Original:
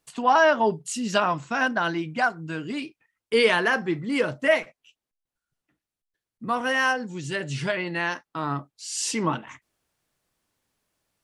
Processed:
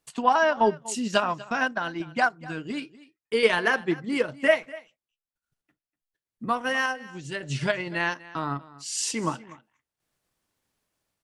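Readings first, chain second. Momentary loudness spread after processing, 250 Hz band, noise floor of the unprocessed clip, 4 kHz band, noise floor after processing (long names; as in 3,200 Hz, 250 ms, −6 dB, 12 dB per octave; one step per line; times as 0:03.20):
14 LU, −2.0 dB, below −85 dBFS, −2.0 dB, below −85 dBFS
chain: transient designer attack +4 dB, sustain −7 dB
sample-and-hold tremolo
single-tap delay 244 ms −19.5 dB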